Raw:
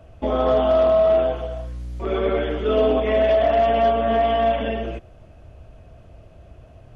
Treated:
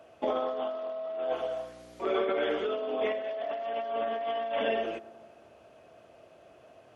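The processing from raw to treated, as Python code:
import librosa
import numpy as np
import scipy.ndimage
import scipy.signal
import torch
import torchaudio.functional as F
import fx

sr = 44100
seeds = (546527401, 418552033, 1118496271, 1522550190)

y = scipy.signal.sosfilt(scipy.signal.butter(2, 370.0, 'highpass', fs=sr, output='sos'), x)
y = fx.over_compress(y, sr, threshold_db=-25.0, ratio=-1.0)
y = fx.echo_bbd(y, sr, ms=97, stages=1024, feedback_pct=72, wet_db=-19.0)
y = F.gain(torch.from_numpy(y), -6.5).numpy()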